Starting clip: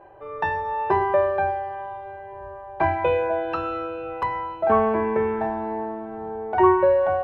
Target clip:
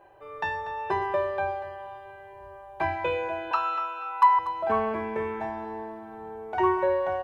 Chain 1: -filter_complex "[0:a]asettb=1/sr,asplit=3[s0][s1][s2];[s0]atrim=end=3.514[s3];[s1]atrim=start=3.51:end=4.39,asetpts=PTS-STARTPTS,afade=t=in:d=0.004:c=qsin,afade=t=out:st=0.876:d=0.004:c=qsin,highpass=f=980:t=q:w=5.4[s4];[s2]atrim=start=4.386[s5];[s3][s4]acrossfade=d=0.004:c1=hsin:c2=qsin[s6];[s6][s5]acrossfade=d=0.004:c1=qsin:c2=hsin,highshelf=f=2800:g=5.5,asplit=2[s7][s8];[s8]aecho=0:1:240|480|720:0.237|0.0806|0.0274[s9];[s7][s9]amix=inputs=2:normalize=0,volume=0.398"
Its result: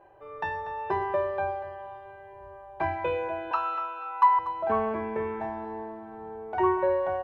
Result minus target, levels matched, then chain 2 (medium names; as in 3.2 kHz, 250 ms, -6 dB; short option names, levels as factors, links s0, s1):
4 kHz band -5.0 dB
-filter_complex "[0:a]asettb=1/sr,asplit=3[s0][s1][s2];[s0]atrim=end=3.514[s3];[s1]atrim=start=3.51:end=4.39,asetpts=PTS-STARTPTS,afade=t=in:d=0.004:c=qsin,afade=t=out:st=0.876:d=0.004:c=qsin,highpass=f=980:t=q:w=5.4[s4];[s2]atrim=start=4.386[s5];[s3][s4]acrossfade=d=0.004:c1=hsin:c2=qsin[s6];[s6][s5]acrossfade=d=0.004:c1=qsin:c2=hsin,highshelf=f=2800:g=16,asplit=2[s7][s8];[s8]aecho=0:1:240|480|720:0.237|0.0806|0.0274[s9];[s7][s9]amix=inputs=2:normalize=0,volume=0.398"